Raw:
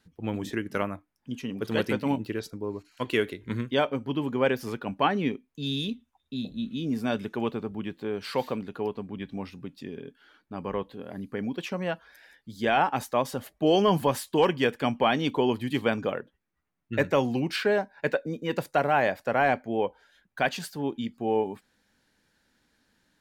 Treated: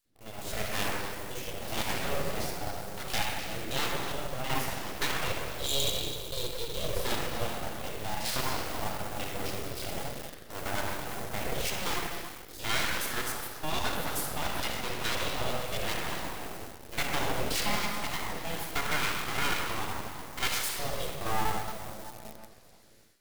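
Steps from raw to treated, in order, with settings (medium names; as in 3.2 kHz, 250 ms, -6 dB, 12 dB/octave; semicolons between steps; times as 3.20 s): spectrogram pixelated in time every 50 ms; hum notches 50/100/150 Hz; simulated room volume 3700 m³, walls mixed, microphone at 3.2 m; in parallel at -10 dB: word length cut 6-bit, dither none; 4.10–4.50 s: on the sum: compression, threshold -19 dBFS, peak gain reduction 5.5 dB; full-wave rectifier; level rider gain up to 14.5 dB; pre-emphasis filter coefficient 0.8; on a send: repeats whose band climbs or falls 128 ms, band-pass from 1.7 kHz, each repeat 1.4 oct, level -7 dB; on the sum: trim -3 dB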